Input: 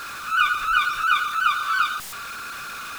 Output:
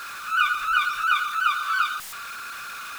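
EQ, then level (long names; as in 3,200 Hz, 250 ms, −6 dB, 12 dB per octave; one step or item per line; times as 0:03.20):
parametric band 1,600 Hz +7 dB 2.8 octaves
high-shelf EQ 5,000 Hz +8 dB
−9.0 dB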